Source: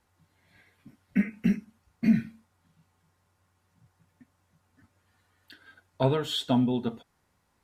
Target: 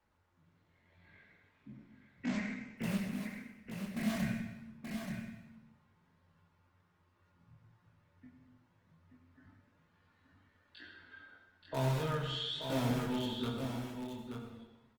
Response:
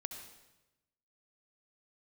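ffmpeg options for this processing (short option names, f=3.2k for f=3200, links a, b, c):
-filter_complex "[0:a]lowpass=3.5k,bandreject=f=750:w=12,adynamicequalizer=threshold=0.00631:dfrequency=320:dqfactor=4.7:tfrequency=320:tqfactor=4.7:attack=5:release=100:ratio=0.375:range=2:mode=cutabove:tftype=bell,acrossover=split=150|850[a][b][c];[b]acompressor=threshold=-34dB:ratio=16[d];[c]alimiter=level_in=7dB:limit=-24dB:level=0:latency=1:release=16,volume=-7dB[e];[a][d][e]amix=inputs=3:normalize=0,atempo=0.51,asplit=2[f][g];[g]aeval=exprs='(mod(21.1*val(0)+1,2)-1)/21.1':c=same,volume=-7.5dB[h];[f][h]amix=inputs=2:normalize=0,flanger=delay=22.5:depth=6.1:speed=1.1,aecho=1:1:879:0.473[i];[1:a]atrim=start_sample=2205[j];[i][j]afir=irnorm=-1:irlink=0,volume=1dB" -ar 48000 -c:a libopus -b:a 24k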